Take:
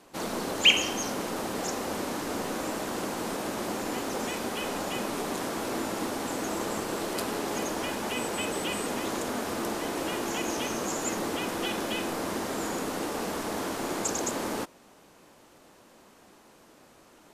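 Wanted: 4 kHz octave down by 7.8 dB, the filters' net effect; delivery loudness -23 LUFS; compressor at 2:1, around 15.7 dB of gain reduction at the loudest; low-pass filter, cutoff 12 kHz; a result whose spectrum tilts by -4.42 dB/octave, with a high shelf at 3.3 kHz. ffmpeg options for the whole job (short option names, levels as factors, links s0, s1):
-af "lowpass=12000,highshelf=f=3300:g=-9,equalizer=f=4000:t=o:g=-5.5,acompressor=threshold=0.00282:ratio=2,volume=11.9"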